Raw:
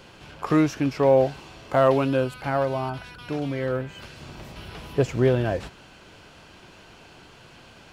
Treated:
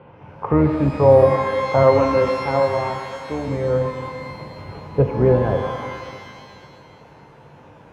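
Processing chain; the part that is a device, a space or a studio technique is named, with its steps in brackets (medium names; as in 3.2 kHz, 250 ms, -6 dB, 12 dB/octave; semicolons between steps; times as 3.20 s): 1.83–3.48 s: high-pass 230 Hz 12 dB/octave; treble shelf 5.5 kHz -5.5 dB; sub-octave bass pedal (octave divider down 2 oct, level -3 dB; cabinet simulation 75–2200 Hz, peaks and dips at 95 Hz +8 dB, 140 Hz +7 dB, 210 Hz +4 dB, 500 Hz +9 dB, 910 Hz +9 dB, 1.7 kHz -6 dB); pitch-shifted reverb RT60 2 s, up +12 st, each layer -8 dB, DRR 5 dB; trim -1 dB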